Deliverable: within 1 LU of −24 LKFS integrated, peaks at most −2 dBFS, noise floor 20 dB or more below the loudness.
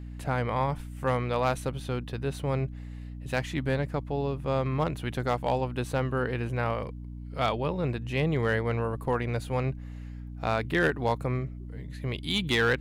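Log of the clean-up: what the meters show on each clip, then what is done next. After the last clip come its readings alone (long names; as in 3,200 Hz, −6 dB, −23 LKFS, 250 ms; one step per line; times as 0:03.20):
share of clipped samples 0.2%; peaks flattened at −17.0 dBFS; mains hum 60 Hz; hum harmonics up to 300 Hz; level of the hum −37 dBFS; integrated loudness −29.5 LKFS; sample peak −17.0 dBFS; target loudness −24.0 LKFS
→ clipped peaks rebuilt −17 dBFS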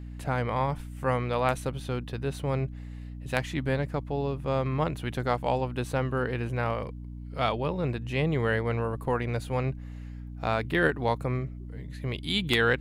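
share of clipped samples 0.0%; mains hum 60 Hz; hum harmonics up to 300 Hz; level of the hum −37 dBFS
→ mains-hum notches 60/120/180/240/300 Hz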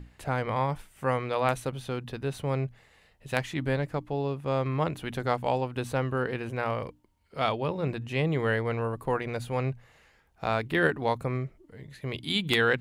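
mains hum none found; integrated loudness −30.0 LKFS; sample peak −8.5 dBFS; target loudness −24.0 LKFS
→ level +6 dB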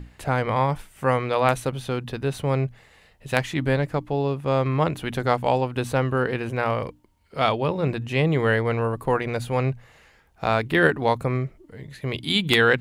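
integrated loudness −24.0 LKFS; sample peak −2.5 dBFS; background noise floor −57 dBFS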